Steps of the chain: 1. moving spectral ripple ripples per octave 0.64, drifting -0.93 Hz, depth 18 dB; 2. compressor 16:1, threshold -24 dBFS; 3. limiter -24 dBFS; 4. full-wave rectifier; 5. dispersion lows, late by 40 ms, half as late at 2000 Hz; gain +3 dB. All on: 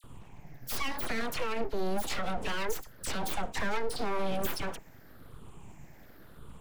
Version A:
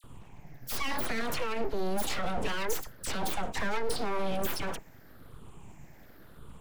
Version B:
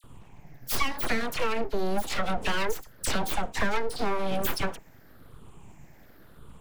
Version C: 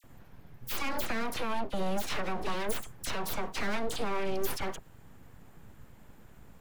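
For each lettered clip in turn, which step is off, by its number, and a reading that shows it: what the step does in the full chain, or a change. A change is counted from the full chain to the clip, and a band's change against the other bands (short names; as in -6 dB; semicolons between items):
2, mean gain reduction 9.5 dB; 3, mean gain reduction 2.0 dB; 1, momentary loudness spread change -15 LU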